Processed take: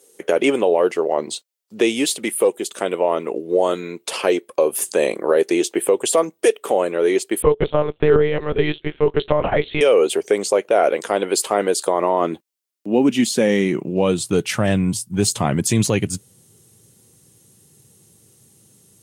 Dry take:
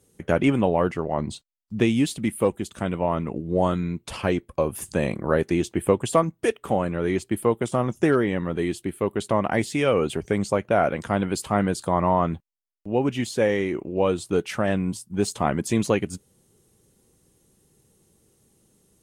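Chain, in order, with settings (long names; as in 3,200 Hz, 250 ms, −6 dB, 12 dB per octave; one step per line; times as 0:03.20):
high-pass filter sweep 430 Hz → 110 Hz, 0:11.90–0:14.50
dynamic equaliser 1,400 Hz, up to −4 dB, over −31 dBFS, Q 0.92
brickwall limiter −10.5 dBFS, peak gain reduction 7.5 dB
0:07.42–0:09.81: one-pitch LPC vocoder at 8 kHz 150 Hz
high-shelf EQ 2,200 Hz +9 dB
level +3.5 dB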